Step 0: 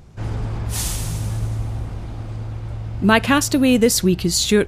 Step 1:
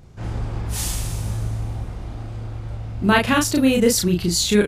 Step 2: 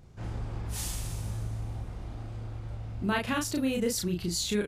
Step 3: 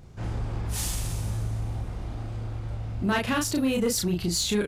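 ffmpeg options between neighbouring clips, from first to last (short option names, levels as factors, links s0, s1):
-filter_complex "[0:a]asplit=2[s0][s1];[s1]adelay=34,volume=0.794[s2];[s0][s2]amix=inputs=2:normalize=0,volume=0.668"
-af "acompressor=threshold=0.0501:ratio=1.5,volume=0.422"
-af "asoftclip=type=tanh:threshold=0.075,volume=1.88"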